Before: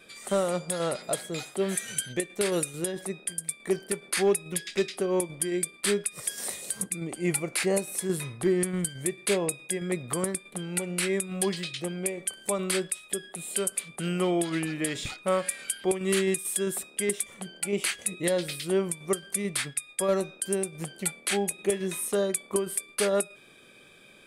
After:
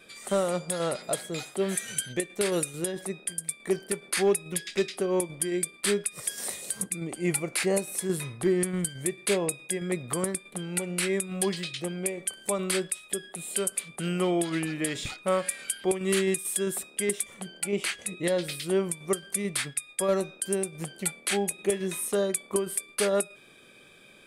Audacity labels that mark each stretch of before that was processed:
17.670000	18.440000	high shelf 8800 Hz -8.5 dB

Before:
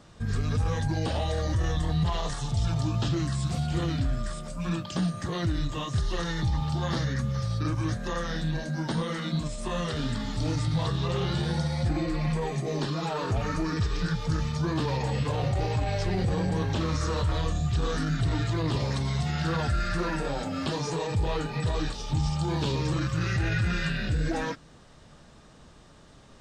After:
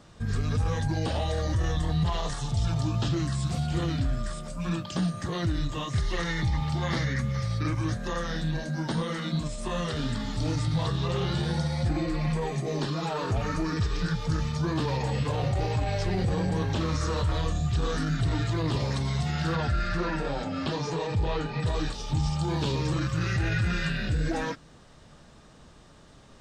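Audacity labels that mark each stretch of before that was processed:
5.900000	7.790000	bell 2100 Hz +11.5 dB 0.31 oct
19.550000	21.660000	LPF 5500 Hz

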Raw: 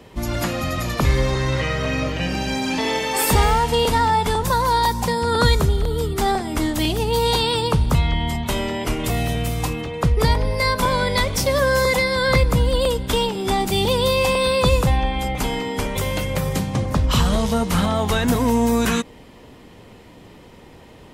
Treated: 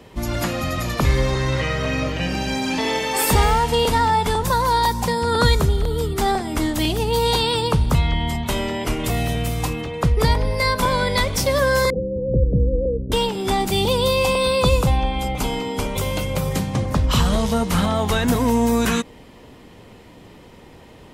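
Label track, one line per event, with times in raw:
11.900000	13.120000	steep low-pass 530 Hz 48 dB/oct
13.810000	16.510000	bell 1800 Hz -9 dB 0.27 oct

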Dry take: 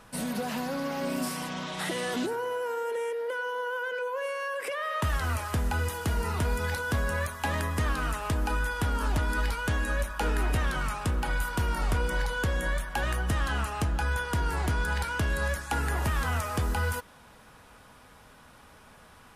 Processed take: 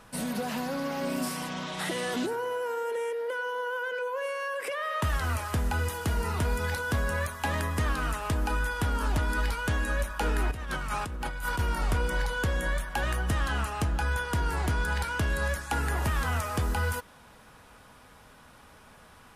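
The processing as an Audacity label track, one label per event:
10.510000	11.590000	negative-ratio compressor -33 dBFS

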